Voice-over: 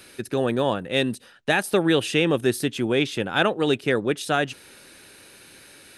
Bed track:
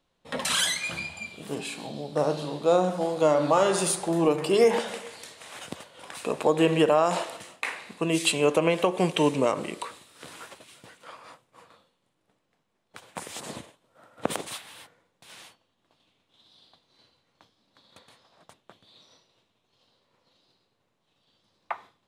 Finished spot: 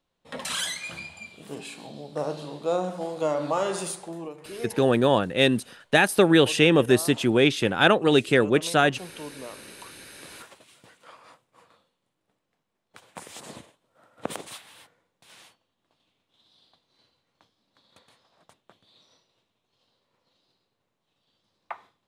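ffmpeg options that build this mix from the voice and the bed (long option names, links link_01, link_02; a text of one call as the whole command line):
ffmpeg -i stem1.wav -i stem2.wav -filter_complex "[0:a]adelay=4450,volume=2.5dB[link_01];[1:a]volume=8.5dB,afade=type=out:start_time=3.71:duration=0.6:silence=0.237137,afade=type=in:start_time=9.64:duration=0.73:silence=0.223872[link_02];[link_01][link_02]amix=inputs=2:normalize=0" out.wav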